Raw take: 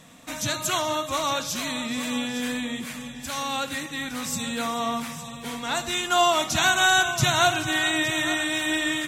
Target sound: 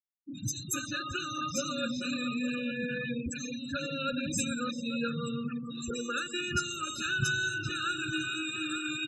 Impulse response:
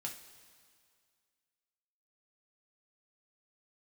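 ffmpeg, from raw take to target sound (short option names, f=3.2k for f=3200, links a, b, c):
-filter_complex "[0:a]afftfilt=real='re*gte(hypot(re,im),0.0355)':imag='im*gte(hypot(re,im),0.0355)':win_size=1024:overlap=0.75,acompressor=threshold=-33dB:ratio=10,acrossover=split=260|4300[a][b][c];[c]adelay=70[d];[b]adelay=460[e];[a][e][d]amix=inputs=3:normalize=0,afftfilt=real='re*eq(mod(floor(b*sr/1024/600),2),0)':imag='im*eq(mod(floor(b*sr/1024/600),2),0)':win_size=1024:overlap=0.75,volume=7dB"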